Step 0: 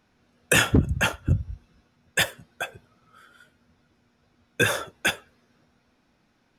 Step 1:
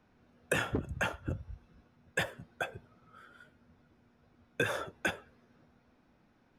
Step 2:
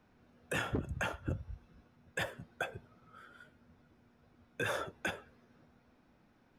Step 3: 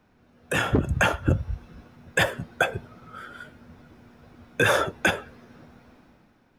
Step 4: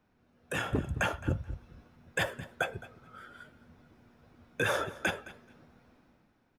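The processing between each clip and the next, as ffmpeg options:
ffmpeg -i in.wav -filter_complex "[0:a]highshelf=frequency=2700:gain=-12,acrossover=split=400|2000[link_01][link_02][link_03];[link_01]acompressor=threshold=-38dB:ratio=4[link_04];[link_02]acompressor=threshold=-33dB:ratio=4[link_05];[link_03]acompressor=threshold=-38dB:ratio=4[link_06];[link_04][link_05][link_06]amix=inputs=3:normalize=0" out.wav
ffmpeg -i in.wav -af "alimiter=level_in=0.5dB:limit=-24dB:level=0:latency=1:release=46,volume=-0.5dB" out.wav
ffmpeg -i in.wav -af "dynaudnorm=framelen=110:gausssize=11:maxgain=10dB,volume=5dB" out.wav
ffmpeg -i in.wav -af "aecho=1:1:215|430:0.119|0.0202,volume=-9dB" out.wav

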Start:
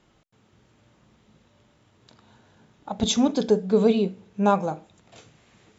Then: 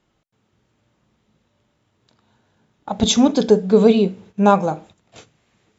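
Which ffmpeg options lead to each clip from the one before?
ffmpeg -i in.wav -af "agate=range=-12dB:threshold=-49dB:ratio=16:detection=peak,volume=6.5dB" out.wav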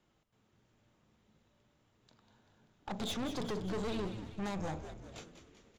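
ffmpeg -i in.wav -filter_complex "[0:a]acrossover=split=370|3300[link_01][link_02][link_03];[link_01]acompressor=threshold=-27dB:ratio=4[link_04];[link_02]acompressor=threshold=-27dB:ratio=4[link_05];[link_03]acompressor=threshold=-41dB:ratio=4[link_06];[link_04][link_05][link_06]amix=inputs=3:normalize=0,aeval=exprs='(tanh(35.5*val(0)+0.55)-tanh(0.55))/35.5':channel_layout=same,asplit=7[link_07][link_08][link_09][link_10][link_11][link_12][link_13];[link_08]adelay=194,afreqshift=-110,volume=-10dB[link_14];[link_09]adelay=388,afreqshift=-220,volume=-15dB[link_15];[link_10]adelay=582,afreqshift=-330,volume=-20.1dB[link_16];[link_11]adelay=776,afreqshift=-440,volume=-25.1dB[link_17];[link_12]adelay=970,afreqshift=-550,volume=-30.1dB[link_18];[link_13]adelay=1164,afreqshift=-660,volume=-35.2dB[link_19];[link_07][link_14][link_15][link_16][link_17][link_18][link_19]amix=inputs=7:normalize=0,volume=-4dB" out.wav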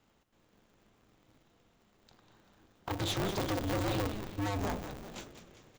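ffmpeg -i in.wav -af "aeval=exprs='val(0)*sgn(sin(2*PI*100*n/s))':channel_layout=same,volume=4dB" out.wav

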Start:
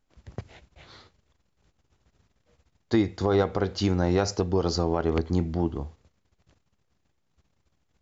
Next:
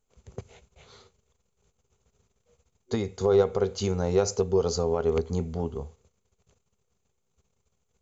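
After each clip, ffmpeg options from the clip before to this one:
ffmpeg -i in.wav -af "superequalizer=6b=0.316:7b=2.24:11b=0.562:15b=2.82,volume=-3.5dB" out.wav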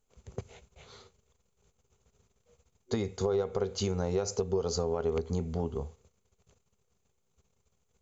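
ffmpeg -i in.wav -af "acompressor=threshold=-26dB:ratio=6" out.wav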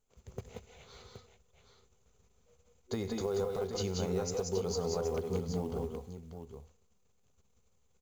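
ffmpeg -i in.wav -filter_complex "[0:a]asplit=2[link_01][link_02];[link_02]alimiter=level_in=4.5dB:limit=-24dB:level=0:latency=1:release=178,volume=-4.5dB,volume=-3dB[link_03];[link_01][link_03]amix=inputs=2:normalize=0,acrusher=bits=7:mode=log:mix=0:aa=0.000001,aecho=1:1:96|163|181|185|773:0.119|0.211|0.473|0.562|0.335,volume=-7dB" out.wav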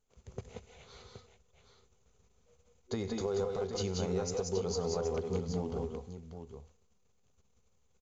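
ffmpeg -i in.wav -af "aresample=16000,aresample=44100" out.wav

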